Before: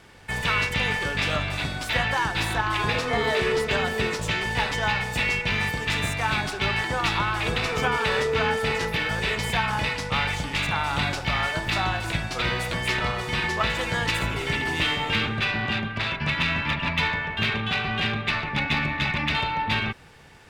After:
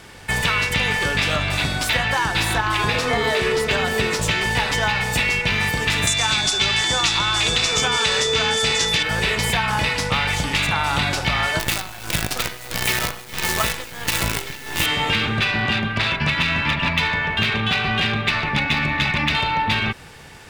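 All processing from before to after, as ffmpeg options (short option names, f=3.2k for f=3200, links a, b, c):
-filter_complex "[0:a]asettb=1/sr,asplit=3[a][b][c];[a]atrim=end=6.074[d];[b]atrim=start=6.07:end=9.03,asetpts=PTS-STARTPTS,afade=t=in:d=0.004:c=qsin,afade=t=out:st=2.956:d=0.004:c=qsin,lowpass=f=6.9k:t=q:w=2,highshelf=f=4.4k:g=11.5,aeval=exprs='val(0)+0.0562*sin(2*PI*3500*n/s)':c=same[e];[c]atrim=start=9.026[f];[d][e]acrossfade=d=0.004:c1=hsin:c2=qsin[g];[g][f]acrossfade=d=0.004:c1=qsin:c2=hsin,asettb=1/sr,asplit=3[h][i][j];[h]atrim=end=11.594[k];[i]atrim=start=11.59:end=14.86,asetpts=PTS-STARTPTS,afade=t=in:d=0.004:c=qsin,afade=t=out:st=3.266:d=0.004:c=qsin,tremolo=f=1.5:d=0.83,acrusher=bits=5:dc=4:mix=0:aa=0.000001[l];[j]atrim=start=14.856[m];[k][l]acrossfade=d=0.004:c1=hsin:c2=qsin[n];[n][m]acrossfade=d=0.004:c1=qsin:c2=hsin,highshelf=f=4.7k:g=6,acompressor=threshold=-24dB:ratio=6,volume=7.5dB"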